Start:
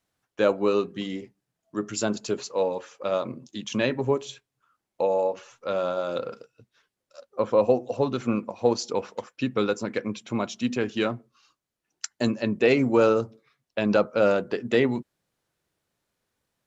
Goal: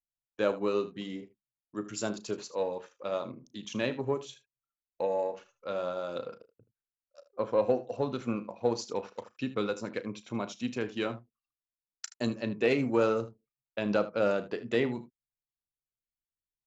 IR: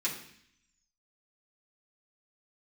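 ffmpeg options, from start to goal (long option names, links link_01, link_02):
-af "anlmdn=0.0158,aeval=exprs='0.473*(cos(1*acos(clip(val(0)/0.473,-1,1)))-cos(1*PI/2))+0.0075*(cos(7*acos(clip(val(0)/0.473,-1,1)))-cos(7*PI/2))':channel_layout=same,aecho=1:1:35|77:0.178|0.168,volume=-6.5dB"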